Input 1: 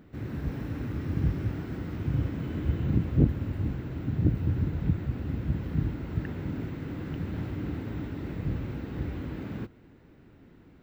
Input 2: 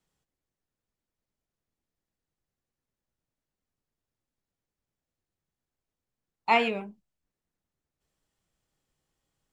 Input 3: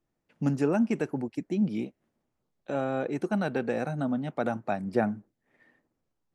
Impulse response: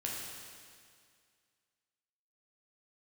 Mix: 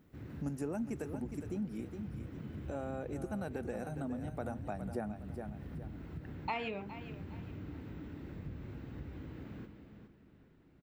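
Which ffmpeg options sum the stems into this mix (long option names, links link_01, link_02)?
-filter_complex "[0:a]alimiter=limit=-20.5dB:level=0:latency=1:release=101,volume=-13dB,asplit=3[link_01][link_02][link_03];[link_02]volume=-8.5dB[link_04];[link_03]volume=-7.5dB[link_05];[1:a]lowpass=5800,acompressor=threshold=-22dB:ratio=6,volume=0dB,asplit=2[link_06][link_07];[link_07]volume=-20.5dB[link_08];[2:a]equalizer=frequency=3900:width=0.55:gain=-14,crystalizer=i=4.5:c=0,volume=-3dB,asplit=2[link_09][link_10];[link_10]volume=-10.5dB[link_11];[3:a]atrim=start_sample=2205[link_12];[link_04][link_12]afir=irnorm=-1:irlink=0[link_13];[link_05][link_08][link_11]amix=inputs=3:normalize=0,aecho=0:1:412|824|1236|1648:1|0.29|0.0841|0.0244[link_14];[link_01][link_06][link_09][link_13][link_14]amix=inputs=5:normalize=0,acompressor=threshold=-42dB:ratio=2"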